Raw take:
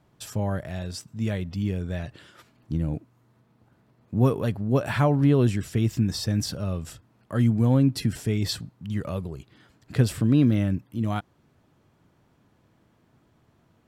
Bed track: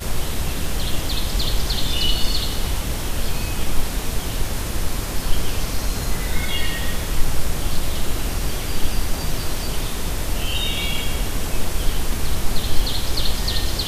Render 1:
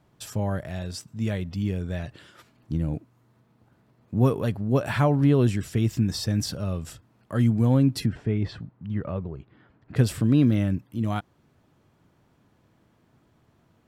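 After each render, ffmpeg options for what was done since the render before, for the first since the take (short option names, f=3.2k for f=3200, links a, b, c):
-filter_complex "[0:a]asplit=3[a][b][c];[a]afade=t=out:st=8.05:d=0.02[d];[b]lowpass=1.9k,afade=t=in:st=8.05:d=0.02,afade=t=out:st=9.95:d=0.02[e];[c]afade=t=in:st=9.95:d=0.02[f];[d][e][f]amix=inputs=3:normalize=0"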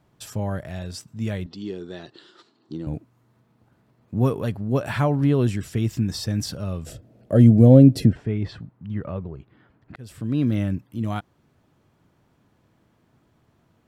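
-filter_complex "[0:a]asettb=1/sr,asplit=3[a][b][c];[a]atrim=end=1.464[d];[b]atrim=start=1.46:end=2.87,asetpts=PTS-STARTPTS,afade=t=in:d=0.004:c=qsin,afade=t=out:st=1.406:d=0.004:c=qsin,highpass=280,equalizer=f=360:t=q:w=4:g=9,equalizer=f=590:t=q:w=4:g=-7,equalizer=f=1.6k:t=q:w=4:g=-3,equalizer=f=2.3k:t=q:w=4:g=-10,equalizer=f=4.1k:t=q:w=4:g=9,equalizer=f=6.3k:t=q:w=4:g=-4,lowpass=f=7.2k:w=0.5412,lowpass=f=7.2k:w=1.3066[e];[c]atrim=start=2.866[f];[d][e]acrossfade=d=0.004:c1=hsin:c2=qsin[g];[g][f]acrossfade=d=0.004:c1=qsin:c2=hsin,asettb=1/sr,asplit=3[h][i][j];[h]atrim=end=6.864[k];[i]atrim=start=6.86:end=8.13,asetpts=PTS-STARTPTS,afade=t=in:d=0.004:c=qsin,afade=t=out:st=1.266:d=0.004:c=qsin,lowshelf=f=770:t=q:w=3:g=8[l];[j]atrim=start=8.126[m];[k][l]acrossfade=d=0.004:c1=hsin:c2=qsin[n];[n][m]acrossfade=d=0.004:c1=qsin:c2=hsin,asplit=2[o][p];[o]atrim=end=9.96,asetpts=PTS-STARTPTS,afade=t=out:st=9.956:d=0.004:c=hsin[q];[p]atrim=start=9.96,asetpts=PTS-STARTPTS,afade=t=in:d=0.62[r];[q][r]concat=n=2:v=0:a=1"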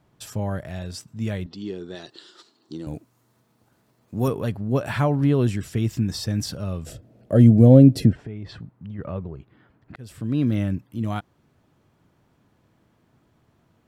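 -filter_complex "[0:a]asettb=1/sr,asplit=3[a][b][c];[a]atrim=end=1.954[d];[b]atrim=start=1.95:end=4.28,asetpts=PTS-STARTPTS,afade=t=in:d=0.004:c=qsin,afade=t=out:st=2.326:d=0.004:c=qsin,bass=f=250:g=-5,treble=f=4k:g=10[e];[c]atrim=start=4.276[f];[d][e]acrossfade=d=0.004:c1=hsin:c2=qsin[g];[g][f]acrossfade=d=0.004:c1=qsin:c2=hsin,asplit=3[h][i][j];[h]afade=t=out:st=8.15:d=0.02[k];[i]acompressor=threshold=-31dB:ratio=5:attack=3.2:release=140:knee=1:detection=peak,afade=t=in:st=8.15:d=0.02,afade=t=out:st=8.98:d=0.02[l];[j]afade=t=in:st=8.98:d=0.02[m];[k][l][m]amix=inputs=3:normalize=0"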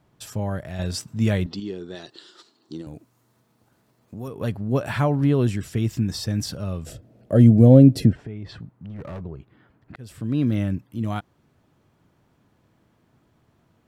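-filter_complex "[0:a]asettb=1/sr,asplit=3[a][b][c];[a]atrim=end=2.814[d];[b]atrim=start=2.81:end=4.41,asetpts=PTS-STARTPTS,afade=t=in:d=0.004:c=qsin,afade=t=out:st=1.596:d=0.004:c=qsin,acompressor=threshold=-35dB:ratio=2.5:attack=3.2:release=140:knee=1:detection=peak[e];[c]atrim=start=4.406[f];[d][e]acrossfade=d=0.004:c1=hsin:c2=qsin[g];[g][f]acrossfade=d=0.004:c1=qsin:c2=hsin,asettb=1/sr,asplit=3[h][i][j];[h]atrim=end=8.774[k];[i]atrim=start=8.77:end=9.21,asetpts=PTS-STARTPTS,afade=t=in:d=0.004:c=qsin,afade=t=out:st=0.436:d=0.004:c=qsin,volume=31dB,asoftclip=hard,volume=-31dB[l];[j]atrim=start=9.206[m];[k][l]acrossfade=d=0.004:c1=hsin:c2=qsin[n];[n][m]acrossfade=d=0.004:c1=qsin:c2=hsin,asplit=3[o][p][q];[o]atrim=end=0.792[r];[p]atrim=start=0.788:end=1.602,asetpts=PTS-STARTPTS,volume=6.5dB[s];[q]atrim=start=1.598[t];[r][s]acrossfade=d=0.004:c1=hsin:c2=hsin[u];[u][t]acrossfade=d=0.004:c1=hsin:c2=hsin"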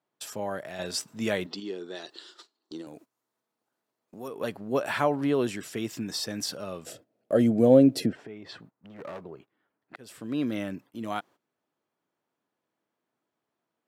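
-af "highpass=350,agate=range=-16dB:threshold=-51dB:ratio=16:detection=peak"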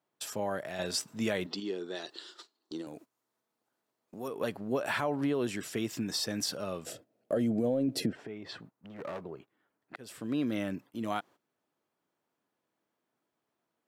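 -af "alimiter=limit=-17.5dB:level=0:latency=1:release=16,acompressor=threshold=-28dB:ratio=2.5"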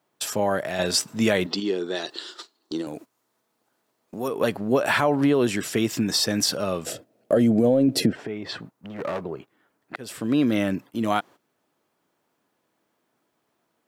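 -af "volume=10.5dB"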